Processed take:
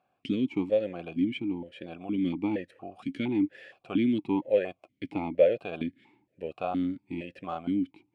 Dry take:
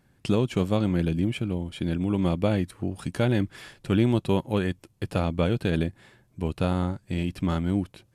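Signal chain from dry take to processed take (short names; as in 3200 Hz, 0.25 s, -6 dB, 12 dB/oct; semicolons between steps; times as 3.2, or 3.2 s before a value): 4.42–5.59 small resonant body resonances 620/2100 Hz, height 10 dB, ringing for 20 ms; vowel sequencer 4.3 Hz; gain +6.5 dB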